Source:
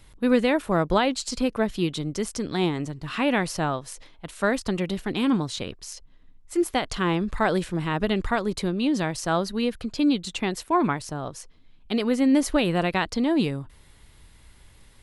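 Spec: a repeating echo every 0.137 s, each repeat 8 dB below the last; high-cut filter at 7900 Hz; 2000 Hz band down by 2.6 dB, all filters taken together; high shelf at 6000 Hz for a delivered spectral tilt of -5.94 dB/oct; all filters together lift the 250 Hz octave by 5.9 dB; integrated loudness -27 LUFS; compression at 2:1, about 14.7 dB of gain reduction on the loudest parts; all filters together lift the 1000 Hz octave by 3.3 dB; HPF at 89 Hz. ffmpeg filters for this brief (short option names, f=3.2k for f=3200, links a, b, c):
-af "highpass=89,lowpass=7.9k,equalizer=f=250:t=o:g=7,equalizer=f=1k:t=o:g=5,equalizer=f=2k:t=o:g=-4.5,highshelf=f=6k:g=-7.5,acompressor=threshold=-38dB:ratio=2,aecho=1:1:137|274|411|548|685:0.398|0.159|0.0637|0.0255|0.0102,volume=5.5dB"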